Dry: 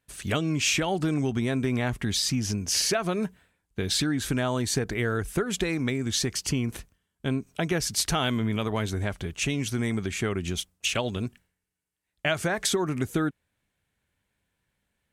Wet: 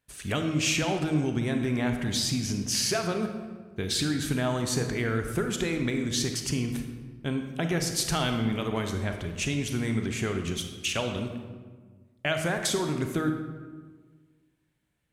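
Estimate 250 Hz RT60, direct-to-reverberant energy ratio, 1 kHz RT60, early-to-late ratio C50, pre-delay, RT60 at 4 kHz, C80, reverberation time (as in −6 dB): 1.7 s, 5.0 dB, 1.4 s, 6.0 dB, 30 ms, 0.90 s, 8.0 dB, 1.5 s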